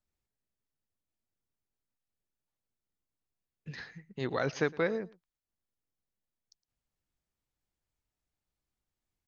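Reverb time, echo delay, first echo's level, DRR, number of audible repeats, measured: no reverb, 112 ms, -22.5 dB, no reverb, 1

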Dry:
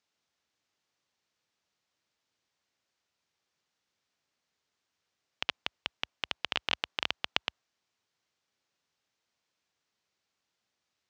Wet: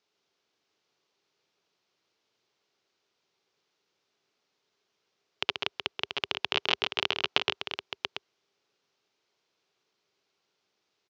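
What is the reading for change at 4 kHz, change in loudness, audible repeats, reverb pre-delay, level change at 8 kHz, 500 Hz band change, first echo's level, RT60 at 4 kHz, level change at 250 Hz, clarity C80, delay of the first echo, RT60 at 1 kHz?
+5.5 dB, +4.5 dB, 2, no reverb, +2.5 dB, +9.0 dB, -6.0 dB, no reverb, +7.0 dB, no reverb, 133 ms, no reverb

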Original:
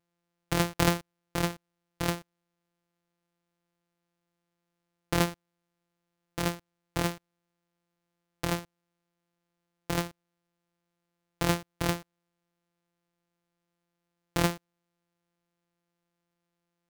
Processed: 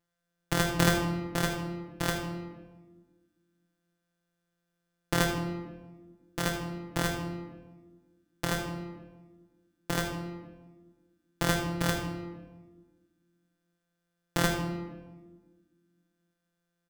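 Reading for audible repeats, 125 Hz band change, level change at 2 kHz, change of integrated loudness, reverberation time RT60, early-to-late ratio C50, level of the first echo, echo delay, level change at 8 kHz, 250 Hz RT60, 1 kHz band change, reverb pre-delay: 1, +1.5 dB, +3.5 dB, 0.0 dB, 1.3 s, 5.5 dB, -12.5 dB, 78 ms, +1.5 dB, 2.1 s, +0.5 dB, 3 ms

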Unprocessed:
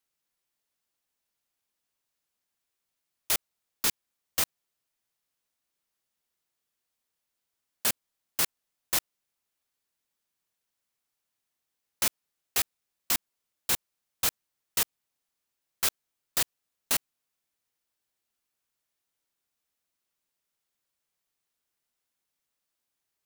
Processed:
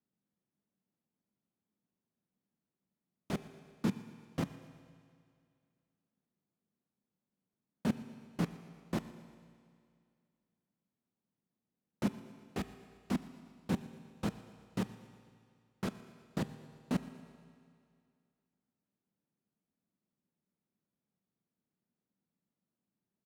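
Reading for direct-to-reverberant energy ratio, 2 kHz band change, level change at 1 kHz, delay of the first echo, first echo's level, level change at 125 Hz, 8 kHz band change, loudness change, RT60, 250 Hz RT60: 11.0 dB, -12.5 dB, -6.0 dB, 118 ms, -21.0 dB, +10.5 dB, -25.5 dB, -10.5 dB, 2.3 s, 2.3 s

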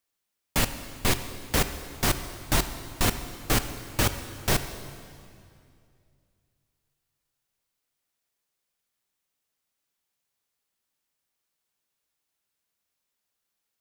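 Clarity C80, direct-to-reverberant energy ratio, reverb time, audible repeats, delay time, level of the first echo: 11.0 dB, 9.0 dB, 2.4 s, no echo, no echo, no echo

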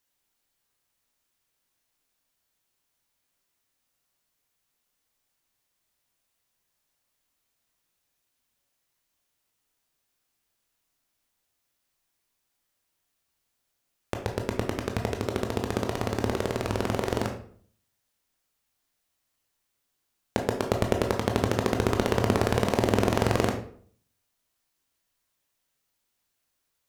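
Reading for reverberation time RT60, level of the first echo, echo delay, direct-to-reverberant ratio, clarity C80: 0.55 s, no echo, no echo, 3.0 dB, 12.5 dB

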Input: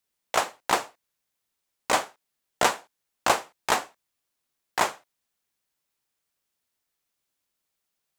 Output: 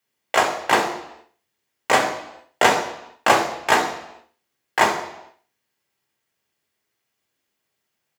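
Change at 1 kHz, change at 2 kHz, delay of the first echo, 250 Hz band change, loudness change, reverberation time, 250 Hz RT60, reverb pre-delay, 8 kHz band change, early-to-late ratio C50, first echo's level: +7.0 dB, +9.0 dB, 66 ms, +9.5 dB, +6.5 dB, 0.80 s, 0.80 s, 3 ms, +2.5 dB, 7.5 dB, -13.0 dB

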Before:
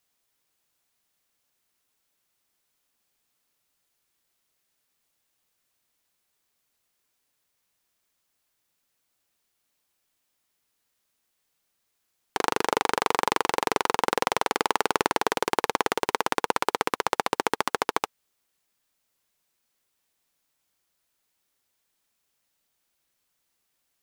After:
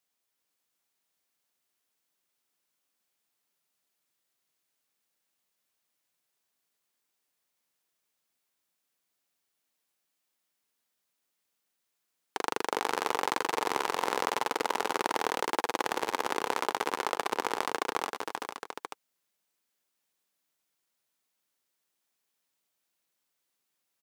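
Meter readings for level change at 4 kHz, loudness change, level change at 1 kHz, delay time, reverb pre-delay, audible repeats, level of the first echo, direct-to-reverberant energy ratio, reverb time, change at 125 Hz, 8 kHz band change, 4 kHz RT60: -5.0 dB, -5.5 dB, -5.0 dB, 385 ms, no reverb, 4, -6.5 dB, no reverb, no reverb, -10.0 dB, -5.0 dB, no reverb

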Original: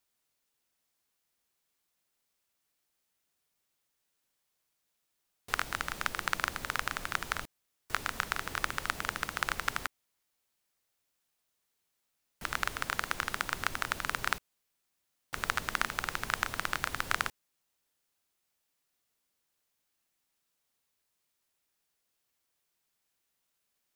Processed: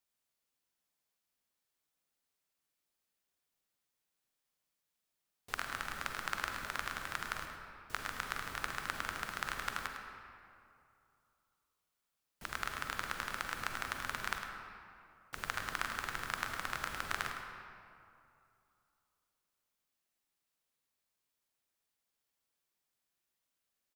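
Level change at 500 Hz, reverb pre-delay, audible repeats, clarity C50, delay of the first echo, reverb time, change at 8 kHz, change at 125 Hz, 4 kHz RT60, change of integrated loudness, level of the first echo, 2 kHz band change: -5.0 dB, 39 ms, 1, 3.0 dB, 105 ms, 2.6 s, -6.0 dB, -5.0 dB, 1.4 s, -5.5 dB, -9.5 dB, -5.0 dB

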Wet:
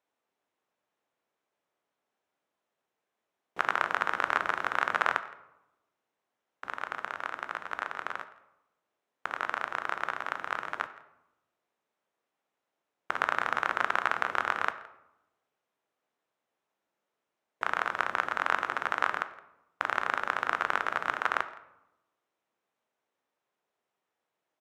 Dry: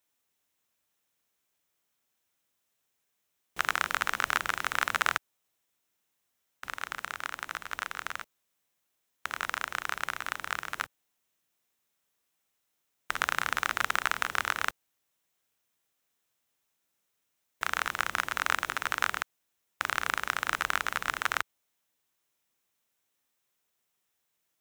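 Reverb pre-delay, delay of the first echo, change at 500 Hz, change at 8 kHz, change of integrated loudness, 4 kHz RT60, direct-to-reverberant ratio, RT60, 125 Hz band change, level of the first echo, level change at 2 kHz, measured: 12 ms, 167 ms, +5.5 dB, -13.5 dB, +0.5 dB, 0.50 s, 10.5 dB, 0.90 s, -4.5 dB, -21.5 dB, -0.5 dB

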